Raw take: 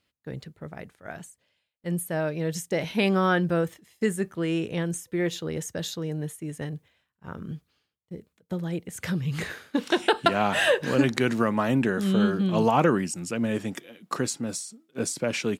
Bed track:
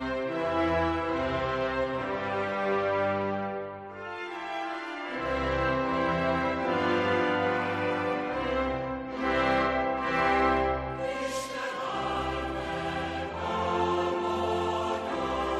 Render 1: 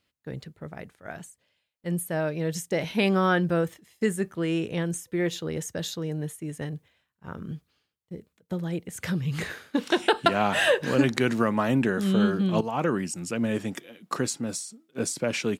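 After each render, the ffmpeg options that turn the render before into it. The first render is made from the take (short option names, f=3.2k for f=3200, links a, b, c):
-filter_complex "[0:a]asplit=2[a][b];[a]atrim=end=12.61,asetpts=PTS-STARTPTS,afade=t=out:st=12.606:d=0.004:c=hsin:silence=0.188365[c];[b]atrim=start=12.61,asetpts=PTS-STARTPTS,afade=t=in:d=0.77:c=qsin:silence=0.188365[d];[c][d]concat=n=2:v=0:a=1"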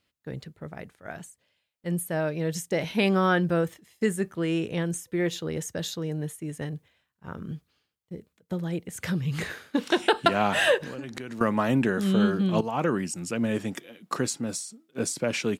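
-filter_complex "[0:a]asettb=1/sr,asplit=3[a][b][c];[a]atrim=end=10.774[d];[b]atrim=start=10.77:end=11.41,asetpts=PTS-STARTPTS,afade=t=in:d=0.004:c=qsin,afade=t=out:st=0.636:d=0.004:c=qsin,acompressor=threshold=-33dB:ratio=8:attack=3.2:release=140:knee=1:detection=peak[e];[c]atrim=start=11.406[f];[d][e]acrossfade=d=0.004:c1=hsin:c2=qsin[g];[g][f]acrossfade=d=0.004:c1=qsin:c2=hsin"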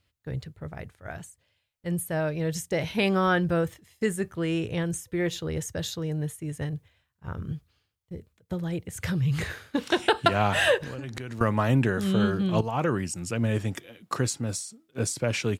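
-af "lowshelf=f=140:t=q:w=1.5:g=9.5"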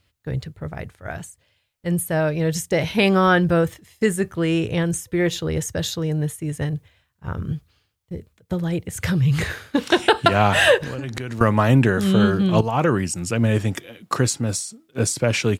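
-af "volume=7dB,alimiter=limit=-3dB:level=0:latency=1"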